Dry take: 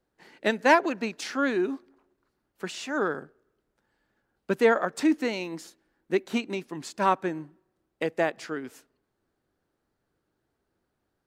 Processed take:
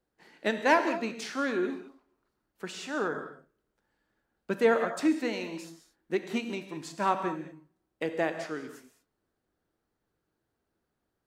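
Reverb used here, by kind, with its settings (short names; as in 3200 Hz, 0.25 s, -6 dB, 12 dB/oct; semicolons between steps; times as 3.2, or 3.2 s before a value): non-linear reverb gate 0.24 s flat, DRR 7 dB; gain -4 dB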